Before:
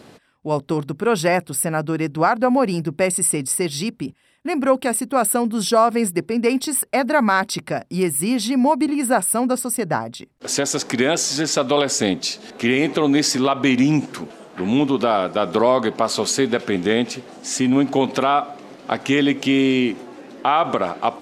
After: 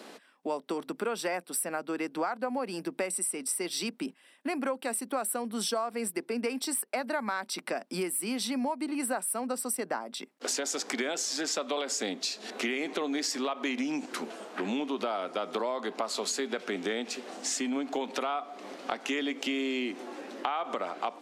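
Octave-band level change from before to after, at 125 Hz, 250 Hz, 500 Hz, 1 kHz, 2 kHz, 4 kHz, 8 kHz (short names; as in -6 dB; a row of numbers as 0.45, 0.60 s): -23.5, -14.5, -13.5, -13.5, -11.0, -9.5, -10.0 dB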